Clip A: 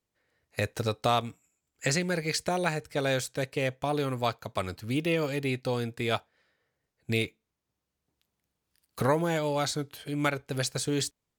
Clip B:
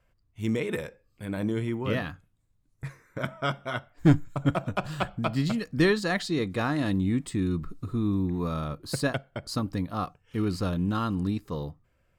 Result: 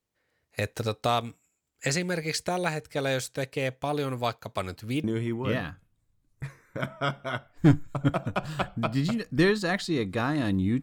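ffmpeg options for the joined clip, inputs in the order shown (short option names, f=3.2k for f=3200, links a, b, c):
-filter_complex "[0:a]apad=whole_dur=10.82,atrim=end=10.82,atrim=end=5.042[a];[1:a]atrim=start=1.448:end=7.23[b];[a][b]acrossfade=d=0.004:c1=hsin:c2=hsin"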